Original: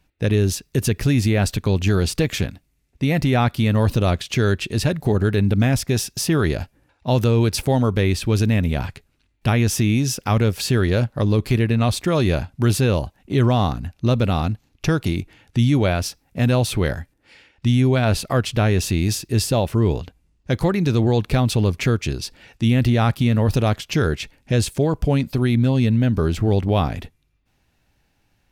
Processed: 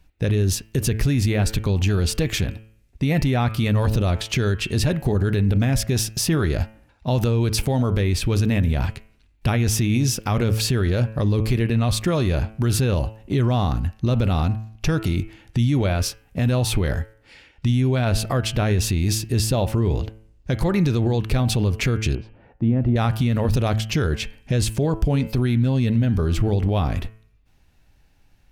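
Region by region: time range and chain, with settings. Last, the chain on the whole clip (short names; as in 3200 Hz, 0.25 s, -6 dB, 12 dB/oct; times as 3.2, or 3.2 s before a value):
22.15–22.96 Chebyshev low-pass 820 Hz + low shelf 77 Hz -10.5 dB
whole clip: low shelf 66 Hz +12 dB; de-hum 109.7 Hz, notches 29; limiter -13 dBFS; gain +1.5 dB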